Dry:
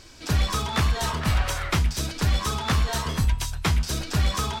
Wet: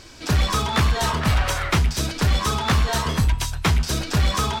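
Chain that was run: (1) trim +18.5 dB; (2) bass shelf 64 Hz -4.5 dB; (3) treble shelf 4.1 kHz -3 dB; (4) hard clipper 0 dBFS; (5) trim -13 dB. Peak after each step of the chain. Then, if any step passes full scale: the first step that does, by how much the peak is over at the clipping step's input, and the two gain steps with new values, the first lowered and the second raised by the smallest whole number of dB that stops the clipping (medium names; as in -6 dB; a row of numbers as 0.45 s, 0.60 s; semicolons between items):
+7.5 dBFS, +7.0 dBFS, +6.5 dBFS, 0.0 dBFS, -13.0 dBFS; step 1, 6.5 dB; step 1 +11.5 dB, step 5 -6 dB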